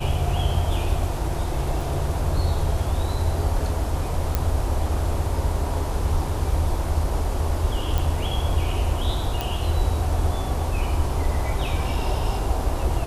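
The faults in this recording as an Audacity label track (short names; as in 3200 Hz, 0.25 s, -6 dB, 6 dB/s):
1.810000	1.810000	gap 2.9 ms
4.350000	4.350000	pop -8 dBFS
7.980000	7.980000	pop
9.410000	9.410000	pop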